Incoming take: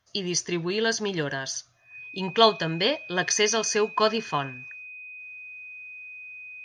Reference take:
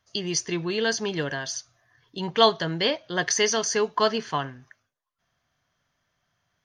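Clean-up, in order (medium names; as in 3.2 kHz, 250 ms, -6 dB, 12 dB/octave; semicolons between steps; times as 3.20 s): band-stop 2.5 kHz, Q 30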